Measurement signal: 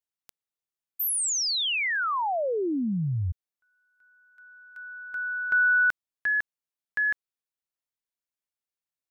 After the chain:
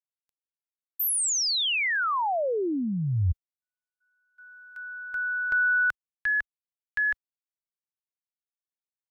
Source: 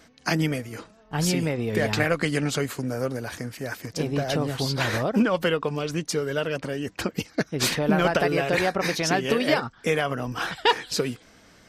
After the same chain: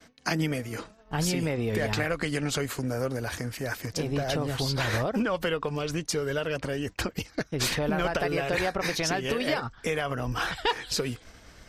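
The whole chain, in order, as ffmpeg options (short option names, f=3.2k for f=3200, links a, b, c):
-af "acompressor=threshold=-25dB:ratio=2.5:attack=0.97:release=385:knee=6:detection=peak,asubboost=boost=4:cutoff=84,agate=range=-33dB:threshold=-53dB:ratio=3:release=55:detection=peak,volume=2.5dB"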